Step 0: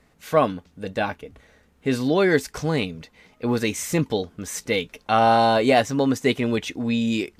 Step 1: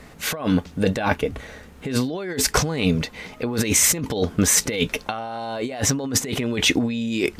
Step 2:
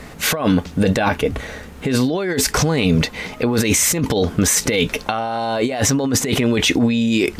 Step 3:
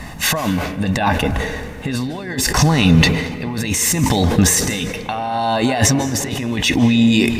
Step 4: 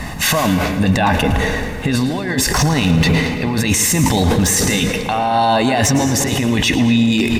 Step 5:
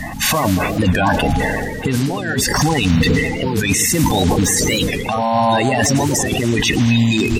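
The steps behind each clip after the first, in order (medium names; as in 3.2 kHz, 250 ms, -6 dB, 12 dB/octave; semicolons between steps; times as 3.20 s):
compressor with a negative ratio -31 dBFS, ratio -1; trim +7.5 dB
peak limiter -15 dBFS, peak gain reduction 10.5 dB; trim +8 dB
tremolo 0.71 Hz, depth 69%; reverberation RT60 2.0 s, pre-delay 147 ms, DRR 11.5 dB; decay stretcher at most 55 dB/s; trim +2.5 dB
one-sided wavefolder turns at -7 dBFS; peak limiter -12 dBFS, peak gain reduction 10 dB; feedback delay 111 ms, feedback 51%, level -13 dB; trim +5.5 dB
coarse spectral quantiser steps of 30 dB; warped record 45 rpm, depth 160 cents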